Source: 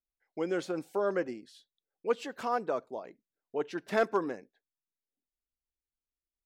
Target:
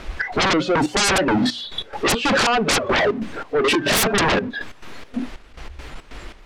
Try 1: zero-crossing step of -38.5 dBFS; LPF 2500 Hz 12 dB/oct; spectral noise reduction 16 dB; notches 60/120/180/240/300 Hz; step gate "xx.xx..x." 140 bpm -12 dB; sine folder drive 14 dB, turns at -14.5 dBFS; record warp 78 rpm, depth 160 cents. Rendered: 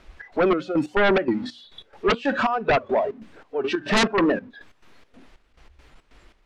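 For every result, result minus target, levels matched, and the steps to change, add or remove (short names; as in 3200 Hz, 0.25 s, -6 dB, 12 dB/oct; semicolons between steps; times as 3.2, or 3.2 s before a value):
sine folder: distortion -14 dB; zero-crossing step: distortion -5 dB
change: sine folder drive 24 dB, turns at -14.5 dBFS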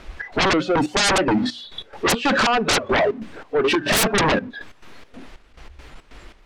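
zero-crossing step: distortion -5 dB
change: zero-crossing step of -32 dBFS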